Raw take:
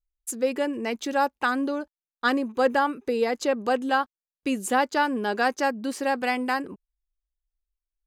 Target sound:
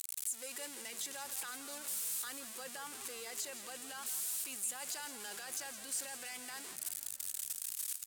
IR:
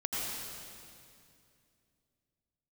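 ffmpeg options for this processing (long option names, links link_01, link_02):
-filter_complex "[0:a]aeval=exprs='val(0)+0.5*0.0447*sgn(val(0))':channel_layout=same,lowpass=10000,aderivative,acompressor=threshold=-41dB:ratio=12,alimiter=level_in=16dB:limit=-24dB:level=0:latency=1:release=16,volume=-16dB,asoftclip=type=tanh:threshold=-35.5dB,aexciter=amount=1.9:drive=6.3:freq=7600,asplit=2[link_01][link_02];[link_02]asplit=8[link_03][link_04][link_05][link_06][link_07][link_08][link_09][link_10];[link_03]adelay=167,afreqshift=-46,volume=-12.5dB[link_11];[link_04]adelay=334,afreqshift=-92,volume=-16.2dB[link_12];[link_05]adelay=501,afreqshift=-138,volume=-20dB[link_13];[link_06]adelay=668,afreqshift=-184,volume=-23.7dB[link_14];[link_07]adelay=835,afreqshift=-230,volume=-27.5dB[link_15];[link_08]adelay=1002,afreqshift=-276,volume=-31.2dB[link_16];[link_09]adelay=1169,afreqshift=-322,volume=-35dB[link_17];[link_10]adelay=1336,afreqshift=-368,volume=-38.7dB[link_18];[link_11][link_12][link_13][link_14][link_15][link_16][link_17][link_18]amix=inputs=8:normalize=0[link_19];[link_01][link_19]amix=inputs=2:normalize=0,volume=6dB"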